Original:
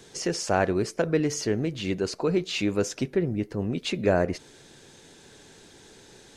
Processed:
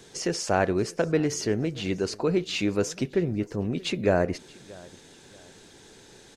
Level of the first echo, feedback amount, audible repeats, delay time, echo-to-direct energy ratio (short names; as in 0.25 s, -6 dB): -23.0 dB, 34%, 2, 0.63 s, -22.5 dB